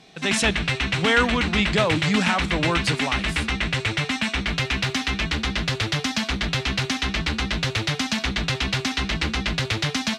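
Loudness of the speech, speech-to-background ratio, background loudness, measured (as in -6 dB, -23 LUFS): -23.5 LUFS, 0.5 dB, -24.0 LUFS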